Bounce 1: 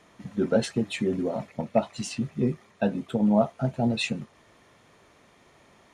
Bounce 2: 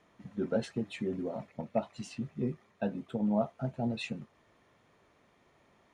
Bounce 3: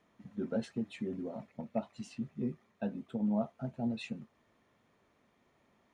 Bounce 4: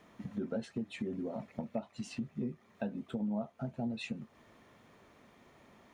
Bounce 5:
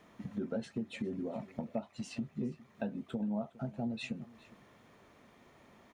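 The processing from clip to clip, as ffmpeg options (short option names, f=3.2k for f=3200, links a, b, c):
-af "highshelf=f=4.3k:g=-8,volume=-8dB"
-af "equalizer=f=230:t=o:w=0.44:g=5.5,volume=-5.5dB"
-af "acompressor=threshold=-48dB:ratio=3,volume=10dB"
-af "aecho=1:1:410:0.0944"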